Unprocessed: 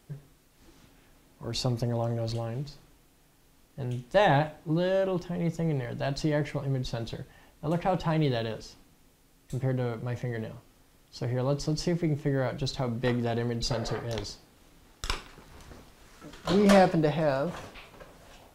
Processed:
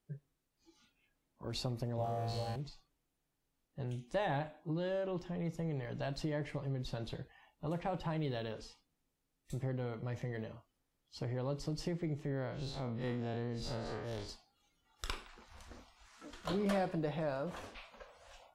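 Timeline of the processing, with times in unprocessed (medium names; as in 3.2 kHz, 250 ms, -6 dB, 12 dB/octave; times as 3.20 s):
1.96–2.56 s: flutter echo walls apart 3.2 m, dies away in 1 s
12.25–14.29 s: spectral blur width 95 ms
whole clip: spectral noise reduction 18 dB; dynamic bell 6.1 kHz, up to -5 dB, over -54 dBFS, Q 2; compression 2:1, threshold -34 dBFS; trim -4.5 dB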